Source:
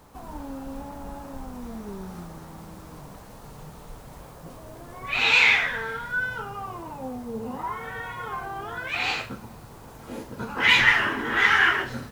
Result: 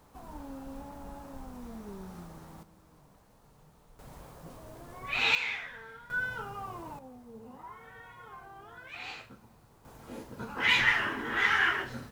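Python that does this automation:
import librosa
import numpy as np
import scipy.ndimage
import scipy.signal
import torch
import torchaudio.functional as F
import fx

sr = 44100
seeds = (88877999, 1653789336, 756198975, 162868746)

y = fx.gain(x, sr, db=fx.steps((0.0, -7.0), (2.63, -17.0), (3.99, -5.5), (5.35, -16.5), (6.1, -5.5), (6.99, -15.5), (9.85, -7.0)))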